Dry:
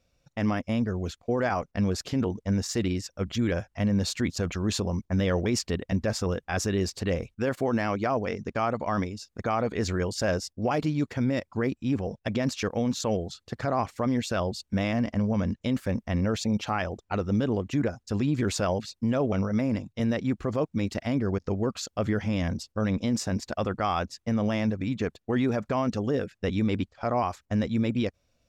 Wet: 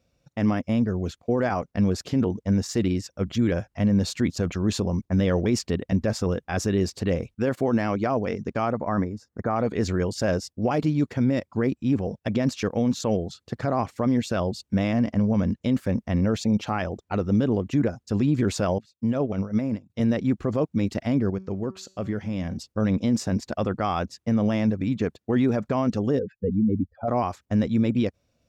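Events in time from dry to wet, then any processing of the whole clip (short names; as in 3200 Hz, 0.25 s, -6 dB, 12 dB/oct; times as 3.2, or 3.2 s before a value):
8.72–9.56 EQ curve 1900 Hz 0 dB, 2800 Hz -20 dB, 5800 Hz -10 dB
18.78–19.9 upward expander 2.5:1, over -35 dBFS
21.3–22.57 resonator 190 Hz, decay 0.49 s, mix 50%
26.19–27.08 spectral contrast raised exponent 2.6
whole clip: HPF 120 Hz 6 dB/oct; low shelf 480 Hz +8 dB; gain -1 dB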